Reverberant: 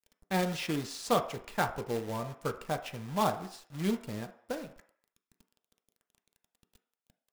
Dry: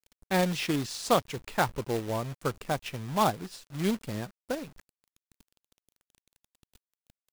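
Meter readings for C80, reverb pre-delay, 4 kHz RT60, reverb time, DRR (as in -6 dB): 15.0 dB, 3 ms, 0.65 s, 0.55 s, 6.0 dB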